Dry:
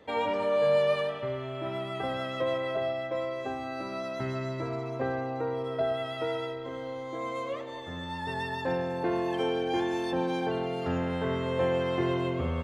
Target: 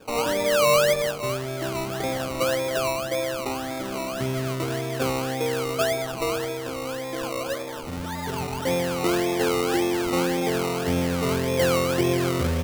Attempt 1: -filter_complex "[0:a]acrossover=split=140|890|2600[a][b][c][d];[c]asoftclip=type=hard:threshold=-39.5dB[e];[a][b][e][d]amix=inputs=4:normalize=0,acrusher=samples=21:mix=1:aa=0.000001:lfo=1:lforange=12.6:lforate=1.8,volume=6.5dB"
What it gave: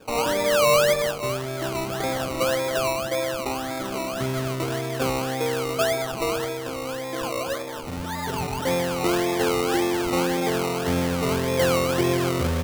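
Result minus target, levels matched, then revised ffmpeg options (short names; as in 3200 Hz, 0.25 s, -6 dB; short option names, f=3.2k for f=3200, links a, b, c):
hard clip: distortion -7 dB
-filter_complex "[0:a]acrossover=split=140|890|2600[a][b][c][d];[c]asoftclip=type=hard:threshold=-49dB[e];[a][b][e][d]amix=inputs=4:normalize=0,acrusher=samples=21:mix=1:aa=0.000001:lfo=1:lforange=12.6:lforate=1.8,volume=6.5dB"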